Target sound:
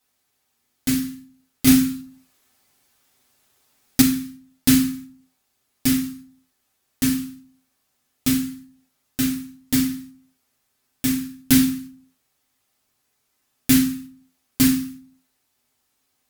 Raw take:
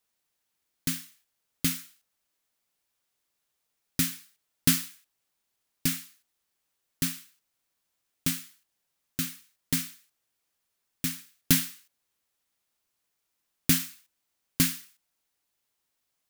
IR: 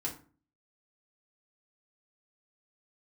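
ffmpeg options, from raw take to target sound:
-filter_complex "[0:a]asplit=2[a][b];[b]acompressor=threshold=-33dB:ratio=6,volume=2dB[c];[a][c]amix=inputs=2:normalize=0[d];[1:a]atrim=start_sample=2205,asetrate=37926,aresample=44100[e];[d][e]afir=irnorm=-1:irlink=0,asettb=1/sr,asplit=3[f][g][h];[f]atrim=end=1.674[i];[g]atrim=start=1.67:end=4.02,asetpts=PTS-STARTPTS,afade=t=in:d=0.004:c=qsin,afade=t=out:st=2.346:d=0.004:c=qsin,acontrast=89[j];[h]atrim=start=4.016[k];[i][j]acrossfade=d=0.004:c1=hsin:c2=qsin[l];[l][k]acrossfade=d=0.004:c1=qsin:c2=hsin"

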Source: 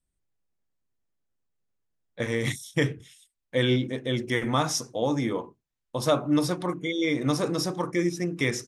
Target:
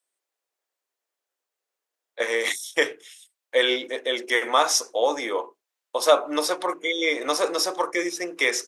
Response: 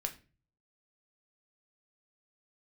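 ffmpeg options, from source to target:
-af "highpass=f=450:w=0.5412,highpass=f=450:w=1.3066,volume=7dB"

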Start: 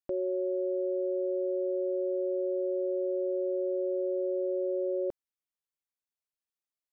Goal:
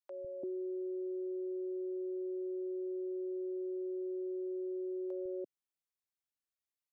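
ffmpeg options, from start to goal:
-filter_complex "[0:a]acrossover=split=150|590[a][b][c];[a]adelay=150[d];[b]adelay=340[e];[d][e][c]amix=inputs=3:normalize=0,adynamicequalizer=threshold=0.00708:dfrequency=360:dqfactor=1.1:tfrequency=360:tqfactor=1.1:attack=5:release=100:ratio=0.375:range=2:mode=boostabove:tftype=bell,acompressor=threshold=-33dB:ratio=6,volume=-4dB"

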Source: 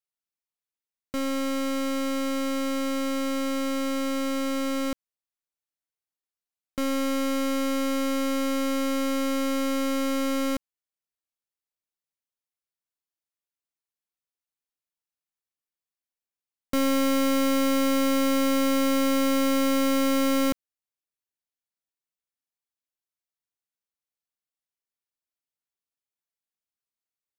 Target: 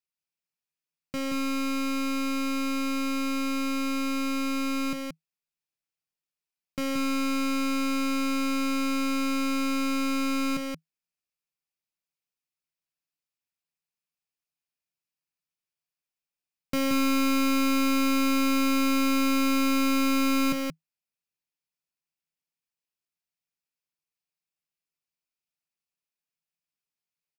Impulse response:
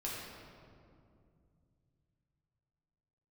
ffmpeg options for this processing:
-af "equalizer=f=160:t=o:w=0.33:g=12,equalizer=f=2.5k:t=o:w=0.33:g=8,equalizer=f=5k:t=o:w=0.33:g=5,aecho=1:1:177:0.631,volume=-3.5dB"

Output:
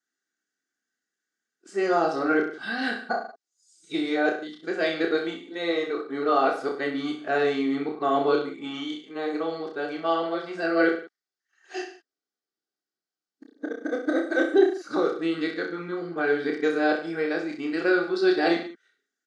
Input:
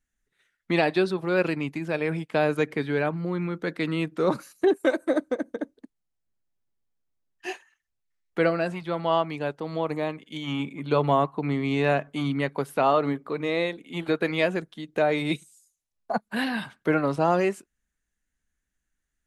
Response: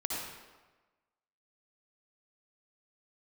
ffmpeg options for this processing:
-af "areverse,highpass=f=220:w=0.5412,highpass=f=220:w=1.3066,equalizer=f=980:t=q:w=4:g=-10,equalizer=f=1.4k:t=q:w=4:g=7,equalizer=f=2.5k:t=q:w=4:g=-8,equalizer=f=4.9k:t=q:w=4:g=7,lowpass=f=7.3k:w=0.5412,lowpass=f=7.3k:w=1.3066,aecho=1:1:2.6:0.45,aecho=1:1:30|63|99.3|139.2|183.2:0.631|0.398|0.251|0.158|0.1,volume=-2dB"

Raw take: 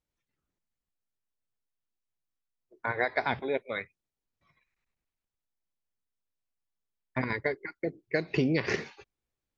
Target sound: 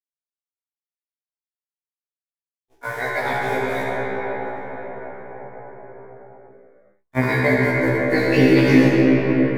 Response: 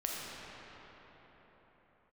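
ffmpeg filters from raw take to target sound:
-filter_complex "[0:a]asettb=1/sr,asplit=3[a][b][c];[a]atrim=end=7.184[d];[b]atrim=start=7.18:end=8.61,asetpts=PTS-STARTPTS,afade=t=in:d=0.004:c=qsin,afade=t=out:st=1.426:d=0.004:c=qsin,acontrast=61[e];[c]atrim=start=8.606[f];[d][e]acrossfade=d=0.004:c1=hsin:c2=qsin[g];[g][f]acrossfade=d=0.004:c1=qsin:c2=hsin,acrusher=bits=8:dc=4:mix=0:aa=0.000001[h];[1:a]atrim=start_sample=2205,asetrate=28224,aresample=44100[i];[h][i]afir=irnorm=-1:irlink=0,alimiter=level_in=5dB:limit=-1dB:release=50:level=0:latency=1,afftfilt=real='re*1.73*eq(mod(b,3),0)':imag='im*1.73*eq(mod(b,3),0)':win_size=2048:overlap=0.75,volume=-1dB"

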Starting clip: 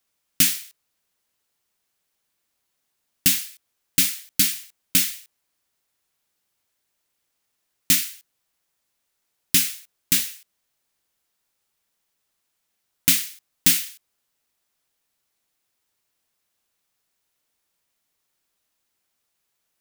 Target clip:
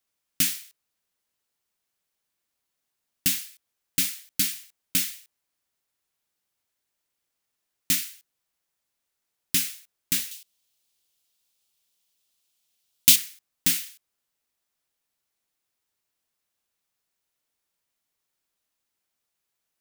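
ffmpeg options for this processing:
-filter_complex "[0:a]asettb=1/sr,asplit=3[a][b][c];[a]atrim=end=10.314[d];[b]atrim=start=10.31:end=13.16,asetpts=PTS-STARTPTS,afade=t=in:d=0.004:c=qsin,afade=t=out:st=2.846:d=0.004:c=qsin,highshelf=f=2.4k:t=q:w=1.5:g=7.5[e];[c]atrim=start=13.156[f];[d][e]acrossfade=d=0.004:c1=hsin:c2=qsin[g];[g][f]acrossfade=d=0.004:c1=qsin:c2=hsin,volume=-5.5dB"

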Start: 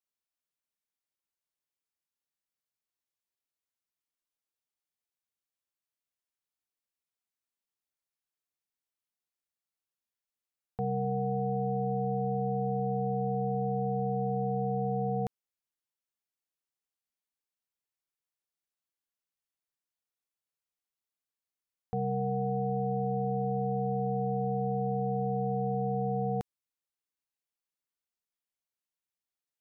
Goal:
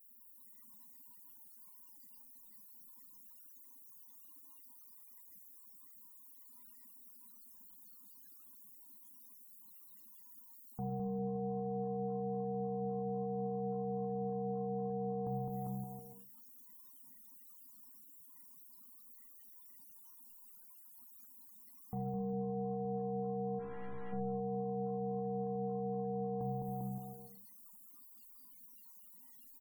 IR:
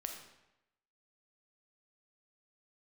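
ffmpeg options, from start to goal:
-filter_complex "[0:a]aeval=exprs='val(0)+0.5*0.00668*sgn(val(0))':c=same,aecho=1:1:210|399|569.1|722.2|860:0.631|0.398|0.251|0.158|0.1,asplit=3[a][b][c];[a]afade=t=out:st=23.58:d=0.02[d];[b]aeval=exprs='(tanh(100*val(0)+0.4)-tanh(0.4))/100':c=same,afade=t=in:st=23.58:d=0.02,afade=t=out:st=24.12:d=0.02[e];[c]afade=t=in:st=24.12:d=0.02[f];[d][e][f]amix=inputs=3:normalize=0,equalizer=f=125:t=o:w=1:g=3,equalizer=f=250:t=o:w=1:g=10,equalizer=f=500:t=o:w=1:g=-7,equalizer=f=1k:t=o:w=1:g=5,alimiter=limit=-23.5dB:level=0:latency=1:release=80[g];[1:a]atrim=start_sample=2205,asetrate=66150,aresample=44100[h];[g][h]afir=irnorm=-1:irlink=0,afftdn=nr=18:nf=-52,aemphasis=mode=production:type=75fm,afftfilt=real='re*gte(hypot(re,im),0.000708)':imag='im*gte(hypot(re,im),0.000708)':win_size=1024:overlap=0.75,volume=-1.5dB"

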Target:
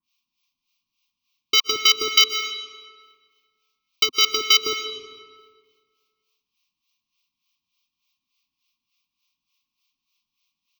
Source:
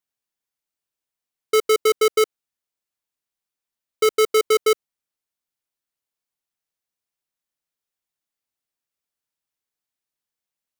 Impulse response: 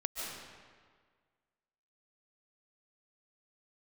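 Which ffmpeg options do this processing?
-filter_complex "[0:a]firequalizer=gain_entry='entry(140,0);entry(250,6);entry(510,-27);entry(1100,13);entry(1500,-26);entry(2400,13);entry(5900,9);entry(9000,-27);entry(16000,7)':delay=0.05:min_phase=1,acompressor=threshold=-18dB:ratio=6,acrossover=split=880[a][b];[a]aeval=exprs='val(0)*(1-1/2+1/2*cos(2*PI*3.4*n/s))':c=same[c];[b]aeval=exprs='val(0)*(1-1/2-1/2*cos(2*PI*3.4*n/s))':c=same[d];[c][d]amix=inputs=2:normalize=0,asplit=2[e][f];[1:a]atrim=start_sample=2205[g];[f][g]afir=irnorm=-1:irlink=0,volume=-6dB[h];[e][h]amix=inputs=2:normalize=0,volume=5.5dB"

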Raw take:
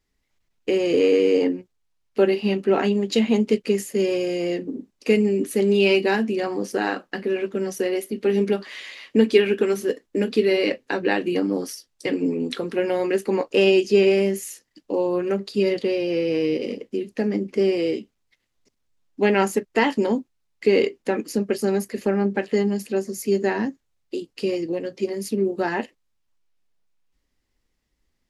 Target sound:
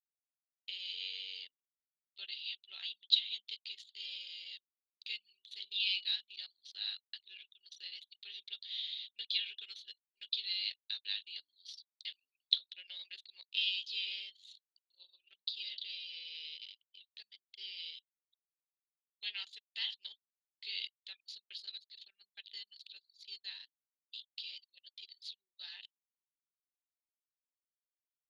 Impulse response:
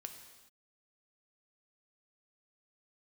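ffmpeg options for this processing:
-af "asuperpass=centerf=3700:order=4:qfactor=4.5,anlmdn=0.0001,volume=6dB"

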